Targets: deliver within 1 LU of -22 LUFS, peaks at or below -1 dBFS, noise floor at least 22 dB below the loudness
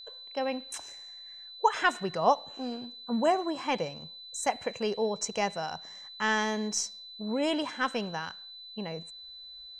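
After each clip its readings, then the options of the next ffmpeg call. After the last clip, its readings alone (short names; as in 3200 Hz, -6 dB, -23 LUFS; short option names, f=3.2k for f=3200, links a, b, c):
steady tone 4000 Hz; tone level -44 dBFS; loudness -31.0 LUFS; peak -11.0 dBFS; loudness target -22.0 LUFS
-> -af "bandreject=f=4k:w=30"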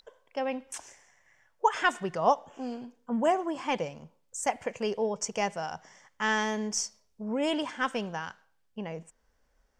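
steady tone none; loudness -31.0 LUFS; peak -11.0 dBFS; loudness target -22.0 LUFS
-> -af "volume=9dB"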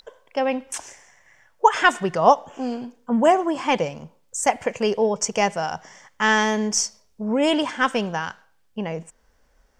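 loudness -22.0 LUFS; peak -2.0 dBFS; noise floor -61 dBFS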